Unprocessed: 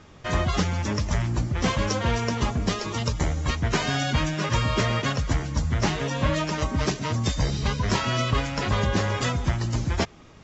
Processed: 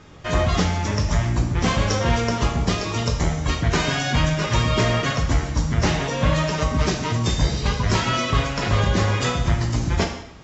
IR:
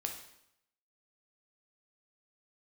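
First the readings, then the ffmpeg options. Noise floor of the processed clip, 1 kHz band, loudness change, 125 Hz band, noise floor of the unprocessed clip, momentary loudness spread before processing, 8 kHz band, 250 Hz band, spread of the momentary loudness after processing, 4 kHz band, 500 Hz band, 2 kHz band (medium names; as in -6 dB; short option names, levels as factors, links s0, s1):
-32 dBFS, +3.5 dB, +4.0 dB, +4.0 dB, -48 dBFS, 3 LU, no reading, +3.5 dB, 3 LU, +4.0 dB, +4.0 dB, +3.5 dB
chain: -filter_complex "[1:a]atrim=start_sample=2205[s0];[0:a][s0]afir=irnorm=-1:irlink=0,volume=1.5"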